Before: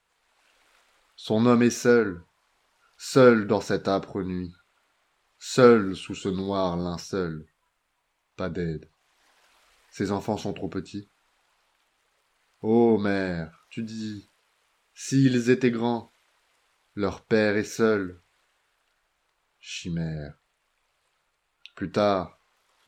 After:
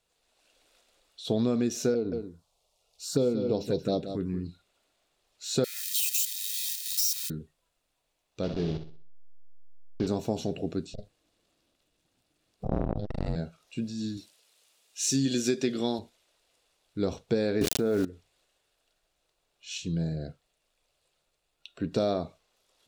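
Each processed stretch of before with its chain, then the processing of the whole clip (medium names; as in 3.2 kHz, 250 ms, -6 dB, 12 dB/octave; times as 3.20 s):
1.94–4.46 s: touch-sensitive phaser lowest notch 260 Hz, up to 1.7 kHz, full sweep at -19.5 dBFS + delay 178 ms -11 dB
5.64–7.30 s: zero-crossing glitches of -19 dBFS + steep high-pass 1.7 kHz 72 dB/octave + comb 1.6 ms, depth 78%
8.43–10.07 s: send-on-delta sampling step -29.5 dBFS + steep low-pass 5.2 kHz + flutter echo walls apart 10.8 m, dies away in 0.42 s
10.94–13.36 s: ring modulator 310 Hz + bass shelf 190 Hz +10.5 dB + transformer saturation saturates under 610 Hz
14.17–15.99 s: high-pass 200 Hz 6 dB/octave + treble shelf 2.6 kHz +9.5 dB
17.61–18.05 s: low-pass 2.8 kHz + small samples zeroed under -38 dBFS + level flattener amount 100%
whole clip: high-order bell 1.4 kHz -10 dB; band-stop 3.1 kHz, Q 18; compression 12:1, threshold -22 dBFS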